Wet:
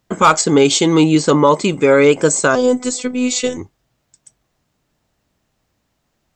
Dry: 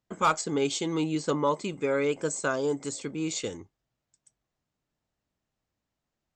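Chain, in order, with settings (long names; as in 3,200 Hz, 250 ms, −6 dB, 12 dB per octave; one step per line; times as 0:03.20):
0:02.55–0:03.57: phases set to zero 250 Hz
boost into a limiter +17.5 dB
level −1 dB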